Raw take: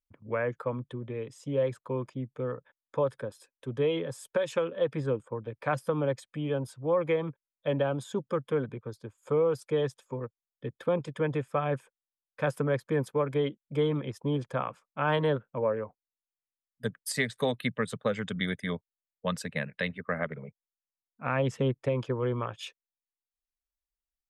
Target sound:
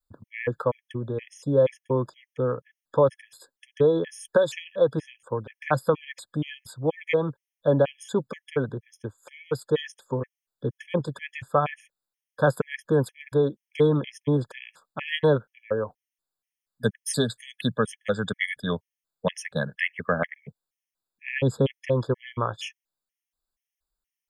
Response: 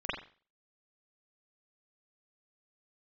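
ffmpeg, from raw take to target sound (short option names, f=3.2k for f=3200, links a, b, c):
-af "adynamicequalizer=threshold=0.00708:dfrequency=230:dqfactor=0.78:tfrequency=230:tqfactor=0.78:attack=5:release=100:ratio=0.375:range=2:mode=cutabove:tftype=bell,afftfilt=real='re*gt(sin(2*PI*2.1*pts/sr)*(1-2*mod(floor(b*sr/1024/1700),2)),0)':imag='im*gt(sin(2*PI*2.1*pts/sr)*(1-2*mod(floor(b*sr/1024/1700),2)),0)':win_size=1024:overlap=0.75,volume=8.5dB"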